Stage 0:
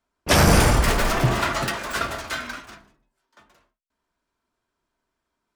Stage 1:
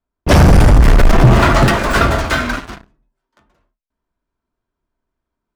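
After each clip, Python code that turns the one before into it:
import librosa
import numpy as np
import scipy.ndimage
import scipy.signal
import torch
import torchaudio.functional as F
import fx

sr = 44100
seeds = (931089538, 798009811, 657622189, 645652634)

y = fx.tilt_eq(x, sr, slope=-2.5)
y = fx.rider(y, sr, range_db=4, speed_s=0.5)
y = fx.leveller(y, sr, passes=3)
y = F.gain(torch.from_numpy(y), -1.5).numpy()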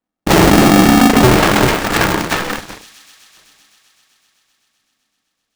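y = fx.echo_wet_highpass(x, sr, ms=128, feedback_pct=83, hz=4300.0, wet_db=-9)
y = fx.cheby_harmonics(y, sr, harmonics=(4,), levels_db=(-11,), full_scale_db=-1.0)
y = y * np.sign(np.sin(2.0 * np.pi * 250.0 * np.arange(len(y)) / sr))
y = F.gain(torch.from_numpy(y), -2.5).numpy()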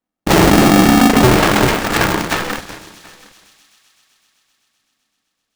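y = x + 10.0 ** (-23.5 / 20.0) * np.pad(x, (int(729 * sr / 1000.0), 0))[:len(x)]
y = F.gain(torch.from_numpy(y), -1.0).numpy()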